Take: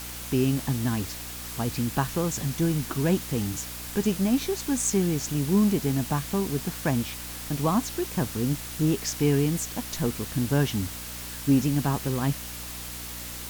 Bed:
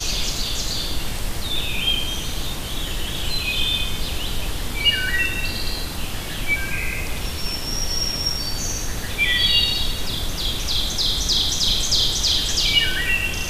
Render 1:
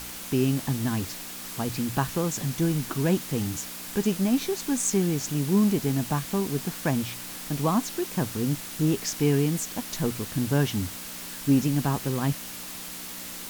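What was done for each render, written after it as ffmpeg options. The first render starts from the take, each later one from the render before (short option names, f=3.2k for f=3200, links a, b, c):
-af "bandreject=f=60:t=h:w=4,bandreject=f=120:t=h:w=4"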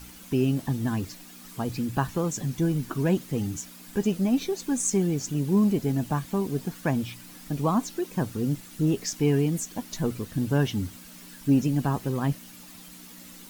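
-af "afftdn=nr=11:nf=-38"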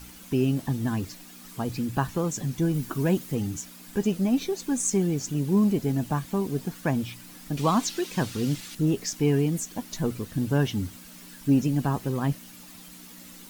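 -filter_complex "[0:a]asettb=1/sr,asplit=3[a][b][c];[a]atrim=end=2.744[d];[b]atrim=start=2.74:end=3.35,asetpts=PTS-STARTPTS,afade=t=in:d=0.004:c=qsin,afade=t=out:st=0.606:d=0.004:c=qsin,highshelf=f=9k:g=6[e];[c]atrim=start=3.346[f];[d][e]acrossfade=d=0.004:c1=hsin:c2=qsin[g];[g][f]acrossfade=d=0.004:c1=qsin:c2=hsin,asettb=1/sr,asplit=3[h][i][j];[h]atrim=end=7.574[k];[i]atrim=start=7.57:end=8.75,asetpts=PTS-STARTPTS,afade=t=in:d=0.004:c=qsin,afade=t=out:st=1.176:d=0.004:c=qsin,equalizer=f=3.7k:w=0.48:g=11[l];[j]atrim=start=8.746[m];[k][l]acrossfade=d=0.004:c1=hsin:c2=qsin[n];[n][m]acrossfade=d=0.004:c1=qsin:c2=hsin"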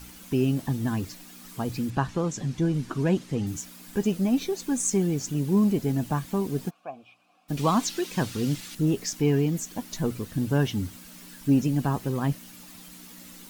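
-filter_complex "[0:a]asettb=1/sr,asplit=3[a][b][c];[a]atrim=end=1.904[d];[b]atrim=start=1.9:end=3.47,asetpts=PTS-STARTPTS,afade=t=in:d=0.004:c=qsin,afade=t=out:st=1.566:d=0.004:c=qsin,lowpass=6.4k[e];[c]atrim=start=3.466[f];[d][e]acrossfade=d=0.004:c1=hsin:c2=qsin[g];[g][f]acrossfade=d=0.004:c1=qsin:c2=hsin,asplit=3[h][i][j];[h]afade=t=out:st=6.69:d=0.02[k];[i]asplit=3[l][m][n];[l]bandpass=f=730:t=q:w=8,volume=0dB[o];[m]bandpass=f=1.09k:t=q:w=8,volume=-6dB[p];[n]bandpass=f=2.44k:t=q:w=8,volume=-9dB[q];[o][p][q]amix=inputs=3:normalize=0,afade=t=in:st=6.69:d=0.02,afade=t=out:st=7.48:d=0.02[r];[j]afade=t=in:st=7.48:d=0.02[s];[k][r][s]amix=inputs=3:normalize=0,asettb=1/sr,asplit=3[t][u][v];[t]atrim=end=9.214[w];[u]atrim=start=9.21:end=9.64,asetpts=PTS-STARTPTS,afade=t=in:d=0.004:c=qsin,afade=t=out:st=0.426:d=0.004:c=qsin,equalizer=f=9.5k:w=4.2:g=-13[x];[v]atrim=start=9.636[y];[w][x]acrossfade=d=0.004:c1=hsin:c2=qsin[z];[z][y]acrossfade=d=0.004:c1=qsin:c2=hsin"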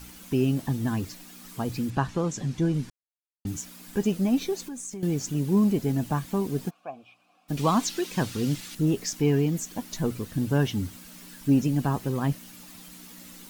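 -filter_complex "[0:a]asettb=1/sr,asplit=3[a][b][c];[a]atrim=end=4.614[d];[b]atrim=start=4.61:end=5.03,asetpts=PTS-STARTPTS,afade=t=in:d=0.004:c=qsin,afade=t=out:st=0.416:d=0.004:c=qsin,acompressor=threshold=-36dB:ratio=4:attack=3.2:release=140:knee=1:detection=peak[e];[c]atrim=start=5.026[f];[d][e]acrossfade=d=0.004:c1=hsin:c2=qsin[g];[g][f]acrossfade=d=0.004:c1=qsin:c2=hsin,asplit=3[h][i][j];[h]atrim=end=2.9,asetpts=PTS-STARTPTS,afade=t=out:st=2.896:d=0.004:c=hsin[k];[i]atrim=start=2.9:end=3.45,asetpts=PTS-STARTPTS,volume=0[l];[j]atrim=start=3.45,asetpts=PTS-STARTPTS,afade=t=in:d=0.004:c=hsin[m];[k][l][m]concat=n=3:v=0:a=1"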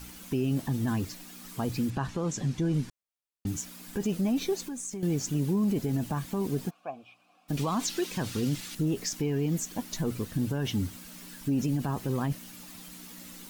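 -af "alimiter=limit=-20.5dB:level=0:latency=1:release=31"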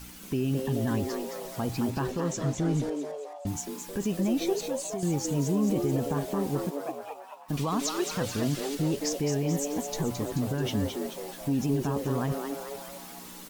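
-filter_complex "[0:a]asplit=8[a][b][c][d][e][f][g][h];[b]adelay=217,afreqshift=140,volume=-6dB[i];[c]adelay=434,afreqshift=280,volume=-11.5dB[j];[d]adelay=651,afreqshift=420,volume=-17dB[k];[e]adelay=868,afreqshift=560,volume=-22.5dB[l];[f]adelay=1085,afreqshift=700,volume=-28.1dB[m];[g]adelay=1302,afreqshift=840,volume=-33.6dB[n];[h]adelay=1519,afreqshift=980,volume=-39.1dB[o];[a][i][j][k][l][m][n][o]amix=inputs=8:normalize=0"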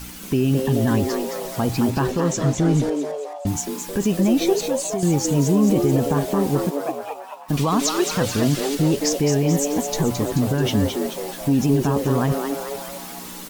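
-af "volume=9dB"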